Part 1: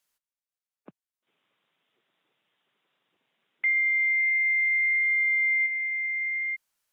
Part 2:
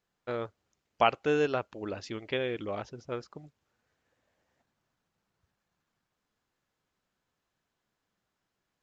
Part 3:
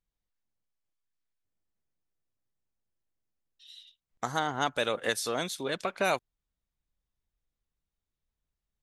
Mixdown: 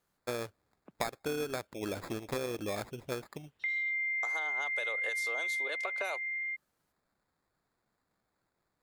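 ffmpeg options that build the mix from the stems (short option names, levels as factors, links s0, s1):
-filter_complex "[0:a]volume=0.473[s0];[1:a]acrusher=samples=15:mix=1:aa=0.000001,volume=1.19[s1];[2:a]highpass=f=430:w=0.5412,highpass=f=430:w=1.3066,alimiter=limit=0.112:level=0:latency=1:release=218,volume=0.668[s2];[s0][s1][s2]amix=inputs=3:normalize=0,acompressor=threshold=0.0282:ratio=12"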